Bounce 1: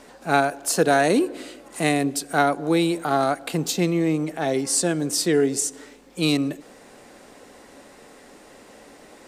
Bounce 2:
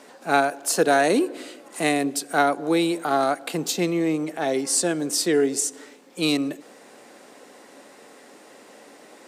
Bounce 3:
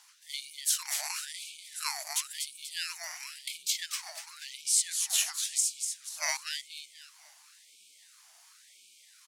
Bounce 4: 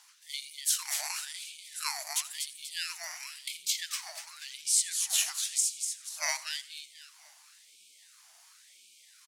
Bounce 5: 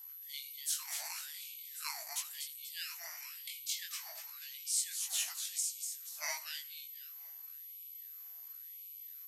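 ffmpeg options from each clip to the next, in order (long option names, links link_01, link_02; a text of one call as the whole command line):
ffmpeg -i in.wav -af "highpass=220" out.wav
ffmpeg -i in.wav -af "aecho=1:1:243|486|729|972|1215:0.501|0.2|0.0802|0.0321|0.0128,afftfilt=real='re*(1-between(b*sr/4096,110,2500))':imag='im*(1-between(b*sr/4096,110,2500))':win_size=4096:overlap=0.75,aeval=exprs='val(0)*sin(2*PI*1100*n/s+1100*0.75/0.95*sin(2*PI*0.95*n/s))':channel_layout=same" out.wav
ffmpeg -i in.wav -af "aecho=1:1:85|170|255:0.119|0.0499|0.021" out.wav
ffmpeg -i in.wav -af "aeval=exprs='val(0)+0.0112*sin(2*PI*12000*n/s)':channel_layout=same,flanger=delay=17:depth=6.1:speed=0.94,volume=-4.5dB" out.wav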